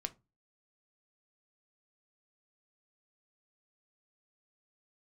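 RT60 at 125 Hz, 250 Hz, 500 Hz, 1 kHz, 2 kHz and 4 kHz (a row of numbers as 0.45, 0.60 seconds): 0.40, 0.35, 0.25, 0.25, 0.20, 0.15 seconds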